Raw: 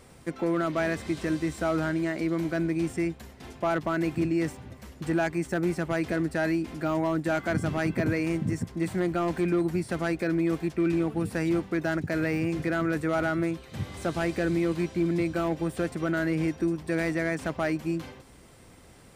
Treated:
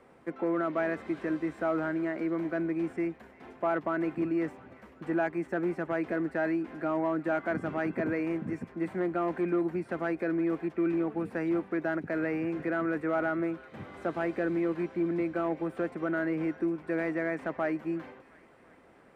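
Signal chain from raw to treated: three-band isolator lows -16 dB, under 210 Hz, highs -20 dB, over 2.3 kHz; feedback echo behind a high-pass 352 ms, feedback 60%, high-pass 1.4 kHz, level -18 dB; trim -1.5 dB

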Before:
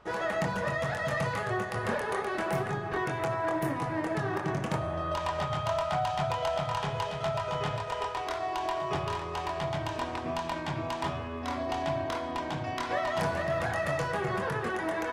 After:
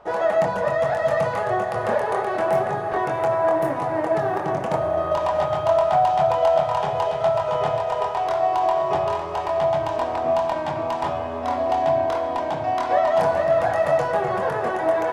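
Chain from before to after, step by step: peaking EQ 680 Hz +13.5 dB 1.3 oct; echo that smears into a reverb 703 ms, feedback 67%, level -13.5 dB

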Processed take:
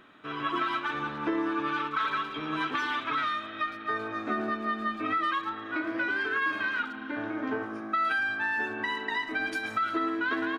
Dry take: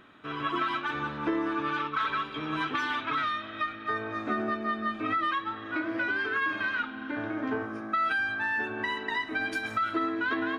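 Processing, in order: peaking EQ 66 Hz -7.5 dB 1.9 oct; speakerphone echo 110 ms, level -13 dB

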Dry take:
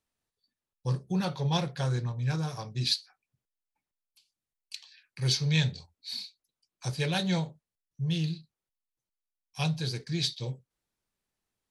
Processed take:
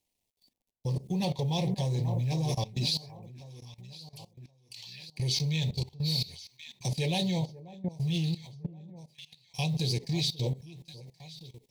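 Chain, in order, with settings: companding laws mixed up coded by mu; Butterworth band-stop 1.4 kHz, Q 1.1; echo whose repeats swap between lows and highs 537 ms, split 1.2 kHz, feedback 56%, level -10.5 dB; level held to a coarse grid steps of 18 dB; trim +7.5 dB

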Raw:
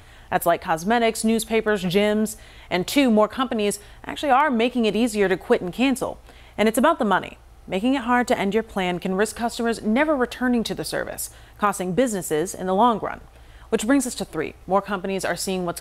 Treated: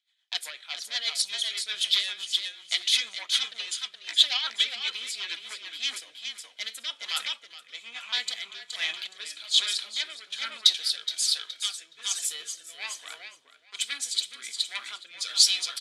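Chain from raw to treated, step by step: pitch shift switched off and on -2 st, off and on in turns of 406 ms; recorder AGC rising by 5.1 dB/s; gate -37 dBFS, range -10 dB; in parallel at +3 dB: compression, threshold -26 dBFS, peak gain reduction 13 dB; on the sum: sine folder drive 9 dB, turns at -2 dBFS; ladder band-pass 4.1 kHz, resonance 45%; band-stop 2.8 kHz, Q 7.9; frequency-shifting echo 420 ms, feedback 31%, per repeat -32 Hz, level -4.5 dB; on a send at -9 dB: reverberation RT60 0.25 s, pre-delay 3 ms; on the sum: rotary cabinet horn 8 Hz, later 1.2 Hz, at 5.25 s; three bands expanded up and down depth 70%

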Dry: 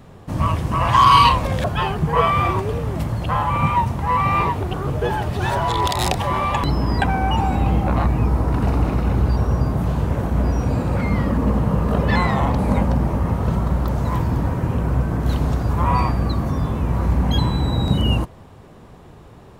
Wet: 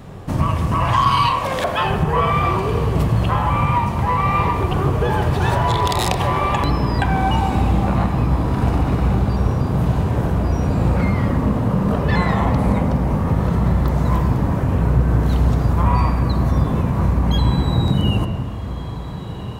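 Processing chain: 1.25–1.85 s: high-pass 380 Hz 12 dB/octave; compression 3:1, threshold -23 dBFS, peak gain reduction 11.5 dB; echo that smears into a reverb 1533 ms, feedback 65%, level -15 dB; on a send at -6 dB: reverberation RT60 1.8 s, pre-delay 24 ms; on the sum: trim +5.5 dB

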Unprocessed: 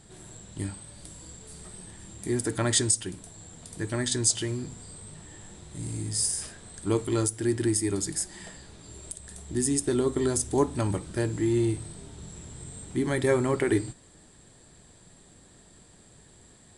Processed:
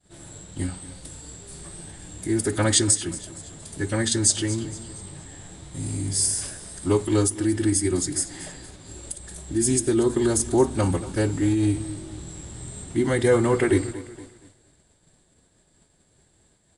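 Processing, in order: feedback delay 233 ms, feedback 44%, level -16 dB; expander -45 dBFS; formant-preserving pitch shift -1.5 st; trim +5 dB

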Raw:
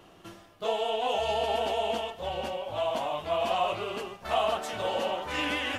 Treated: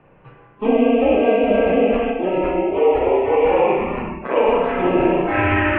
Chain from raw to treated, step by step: mistuned SSB -200 Hz 200–2500 Hz; in parallel at +3 dB: compression, threshold -39 dBFS, peak gain reduction 15.5 dB; 3.73–4.36 s: on the sum: AM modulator 130 Hz, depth 85%; spring tank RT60 1.1 s, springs 33/48 ms, chirp 50 ms, DRR -0.5 dB; spectral noise reduction 13 dB; trim +7.5 dB

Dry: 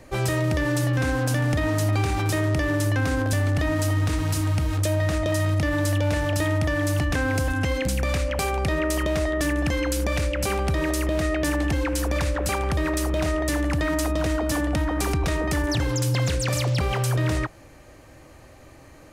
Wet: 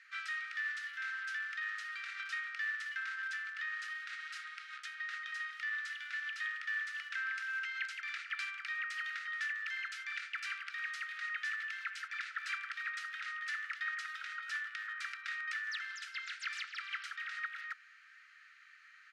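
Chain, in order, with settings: low-pass 2.5 kHz 12 dB/octave; speakerphone echo 270 ms, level -7 dB; compression, threshold -25 dBFS, peak gain reduction 6.5 dB; rippled Chebyshev high-pass 1.3 kHz, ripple 3 dB; trim +1 dB

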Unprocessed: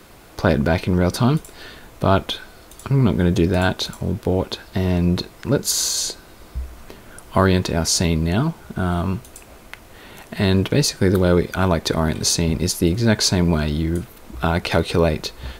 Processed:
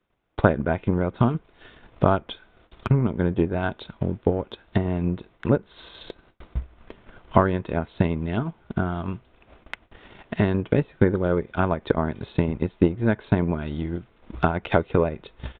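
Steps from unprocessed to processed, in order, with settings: gate with hold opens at -33 dBFS; resampled via 8 kHz; transient shaper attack +11 dB, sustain -6 dB; low-pass that closes with the level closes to 2 kHz, closed at -11 dBFS; trim -8.5 dB

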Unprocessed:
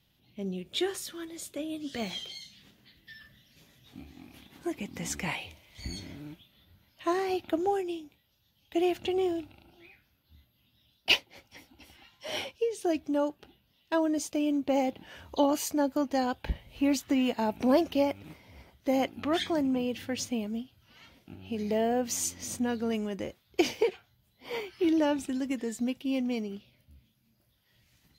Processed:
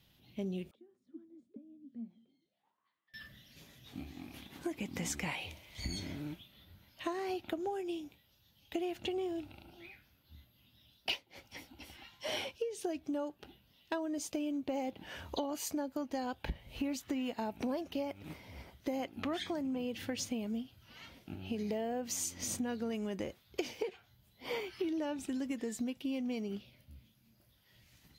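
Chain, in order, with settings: compression 8:1, threshold -36 dBFS, peak gain reduction 17.5 dB; 0.71–3.14 s: auto-wah 230–1400 Hz, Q 13, down, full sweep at -38.5 dBFS; trim +2 dB

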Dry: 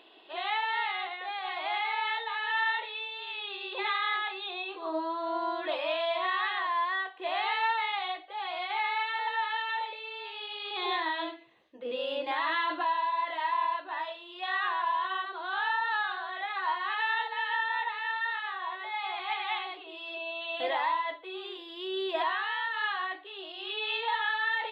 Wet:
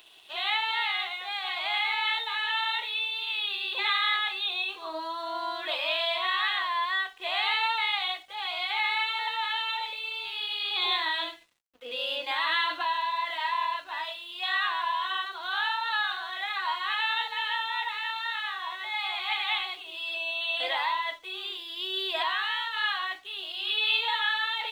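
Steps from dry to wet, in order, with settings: tilt EQ +5 dB/octave; band-stop 1.8 kHz, Q 19; crossover distortion -58 dBFS

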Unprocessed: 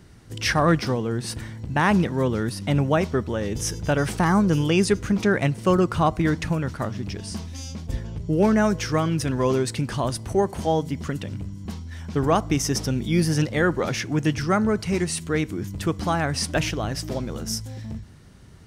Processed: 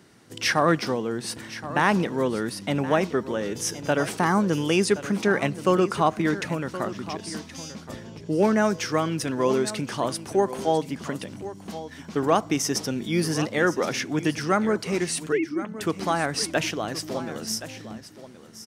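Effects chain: 15.32–15.81 s: formants replaced by sine waves; high-pass 220 Hz 12 dB/octave; delay 1072 ms -14 dB

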